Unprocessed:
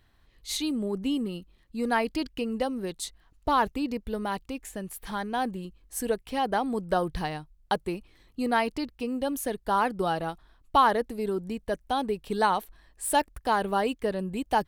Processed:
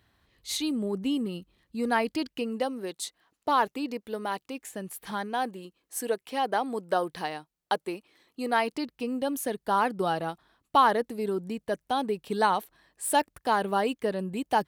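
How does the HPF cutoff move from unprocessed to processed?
1.84 s 78 Hz
2.76 s 280 Hz
4.48 s 280 Hz
5.09 s 110 Hz
5.38 s 300 Hz
8.53 s 300 Hz
8.95 s 130 Hz

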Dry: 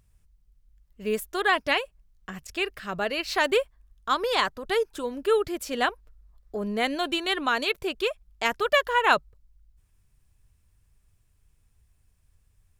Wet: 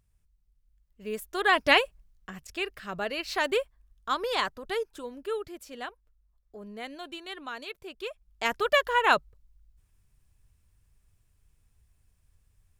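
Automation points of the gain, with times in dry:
1.11 s -7.5 dB
1.78 s +5 dB
2.31 s -4 dB
4.49 s -4 dB
5.84 s -13.5 dB
7.86 s -13.5 dB
8.53 s -1.5 dB

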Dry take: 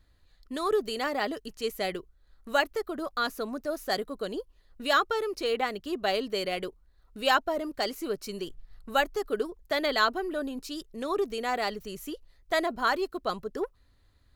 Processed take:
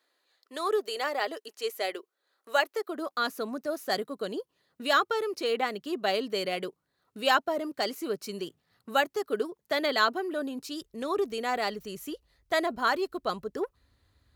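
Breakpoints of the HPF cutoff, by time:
HPF 24 dB/oct
2.72 s 370 Hz
3.42 s 130 Hz
10.41 s 130 Hz
10.82 s 50 Hz

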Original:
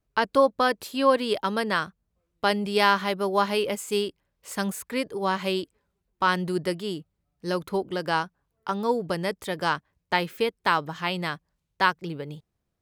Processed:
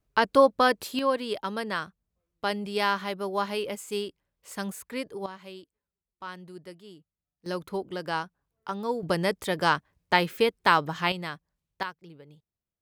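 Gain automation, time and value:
+1 dB
from 0.99 s -5.5 dB
from 5.26 s -17 dB
from 7.46 s -5 dB
from 9.03 s +2 dB
from 11.12 s -5.5 dB
from 11.83 s -15 dB

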